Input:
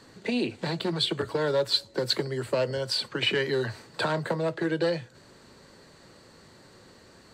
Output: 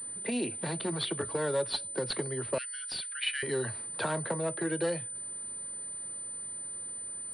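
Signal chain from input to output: 2.58–3.43 s: steep high-pass 1.4 kHz 72 dB/octave; class-D stage that switches slowly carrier 9 kHz; trim -4.5 dB

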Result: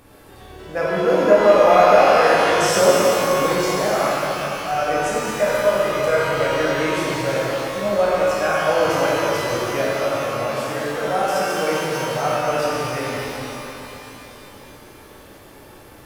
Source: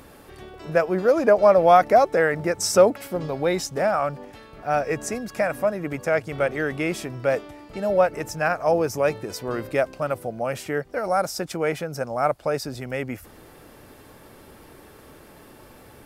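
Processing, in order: 5.33–6.27 s: comb 2 ms, depth 79%; pitch-shifted reverb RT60 3.3 s, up +12 st, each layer -8 dB, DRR -7.5 dB; trim -5 dB

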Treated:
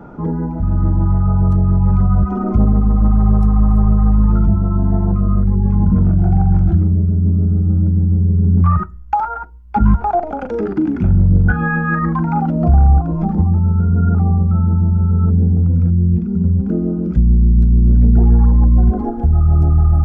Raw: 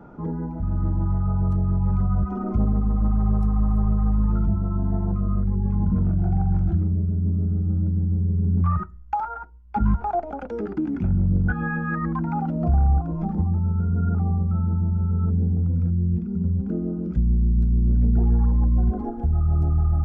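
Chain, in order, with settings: 10.12–12.38 s: doubling 41 ms -11 dB; trim +8.5 dB

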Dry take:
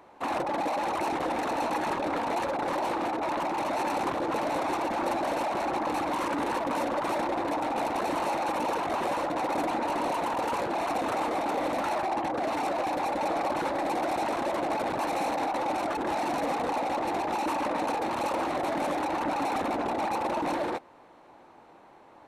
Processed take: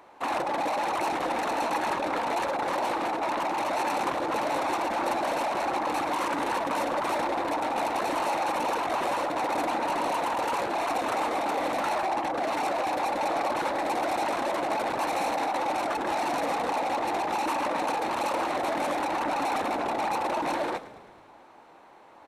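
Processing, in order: bass shelf 420 Hz -7.5 dB; frequency-shifting echo 108 ms, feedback 61%, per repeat -42 Hz, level -16 dB; trim +3 dB

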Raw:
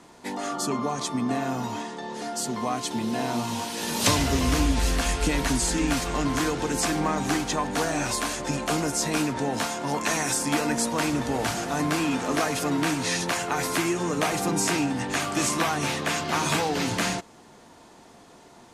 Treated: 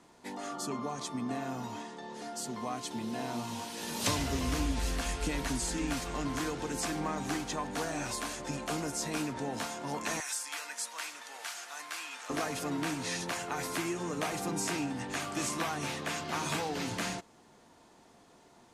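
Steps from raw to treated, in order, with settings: 10.20–12.30 s: high-pass 1.3 kHz 12 dB/octave; trim -9 dB

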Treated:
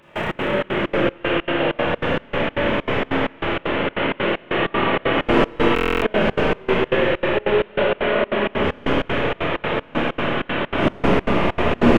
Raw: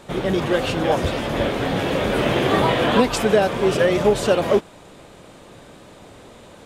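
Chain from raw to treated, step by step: one-bit delta coder 16 kbps, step -14.5 dBFS; wind noise 400 Hz -20 dBFS; plain phase-vocoder stretch 1.8×; bass shelf 190 Hz -7.5 dB; band-stop 750 Hz, Q 12; Schroeder reverb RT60 3 s, combs from 26 ms, DRR -9.5 dB; trance gate "..xx.xxx.xx.xx" 193 bpm -24 dB; buffer glitch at 5.74 s, samples 1024, times 11; trim -7 dB

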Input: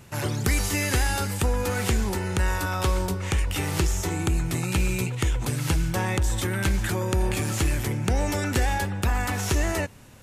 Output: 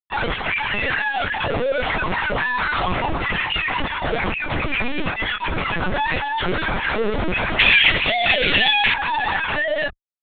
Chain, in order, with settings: formants replaced by sine waves; fuzz box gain 44 dB, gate -42 dBFS; doubling 22 ms -4 dB; LPC vocoder at 8 kHz pitch kept; 7.59–8.94 s: resonant high shelf 1.8 kHz +11.5 dB, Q 1.5; trim -8.5 dB

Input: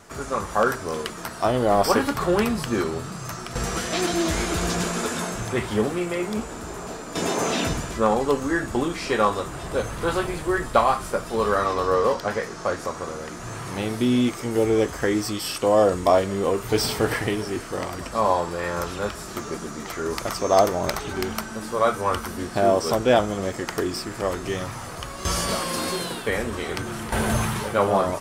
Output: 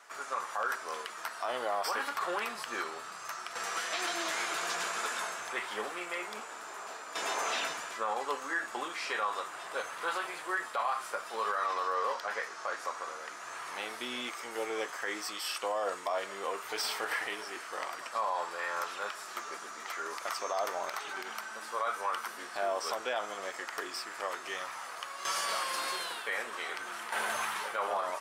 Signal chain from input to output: high-pass 1.1 kHz 12 dB/octave; treble shelf 3.1 kHz -10 dB; peak limiter -23 dBFS, peak gain reduction 11 dB

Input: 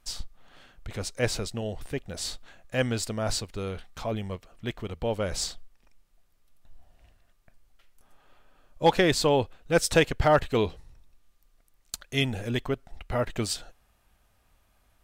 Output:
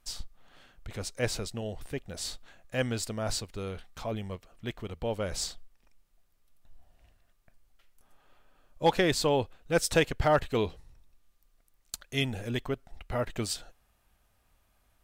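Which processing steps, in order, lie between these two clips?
treble shelf 11 kHz +3.5 dB; trim -3.5 dB

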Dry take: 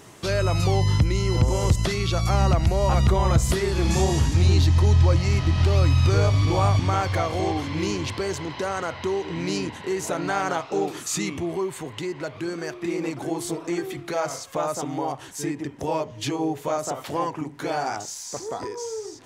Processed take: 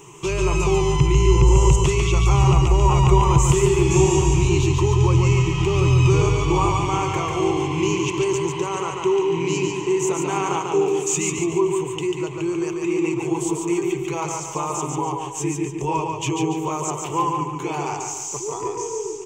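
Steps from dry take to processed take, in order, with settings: rippled EQ curve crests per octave 0.71, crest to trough 17 dB; on a send: feedback delay 143 ms, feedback 42%, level -4 dB; on the sum: trim -1.5 dB

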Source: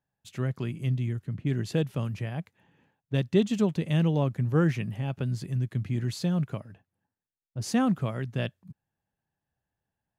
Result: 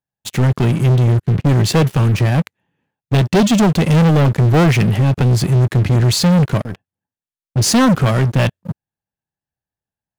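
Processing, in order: waveshaping leveller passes 5; trim +4 dB

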